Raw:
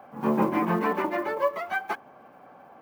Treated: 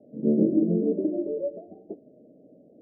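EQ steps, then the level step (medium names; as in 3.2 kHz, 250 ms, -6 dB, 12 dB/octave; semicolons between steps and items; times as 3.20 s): rippled Chebyshev low-pass 650 Hz, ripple 6 dB; peaking EQ 300 Hz +13.5 dB 0.69 oct; 0.0 dB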